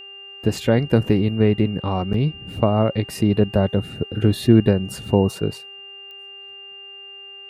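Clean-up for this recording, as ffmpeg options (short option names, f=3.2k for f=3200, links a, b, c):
-af "adeclick=t=4,bandreject=f=395.4:t=h:w=4,bandreject=f=790.8:t=h:w=4,bandreject=f=1.1862k:t=h:w=4,bandreject=f=1.5816k:t=h:w=4,bandreject=f=1.977k:t=h:w=4,bandreject=f=2.3724k:t=h:w=4,bandreject=f=2.8k:w=30"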